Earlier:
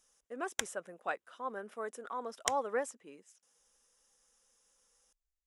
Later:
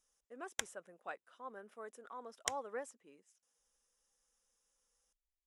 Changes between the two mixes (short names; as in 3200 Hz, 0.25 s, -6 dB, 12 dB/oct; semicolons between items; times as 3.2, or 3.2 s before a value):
speech -9.0 dB; background -4.0 dB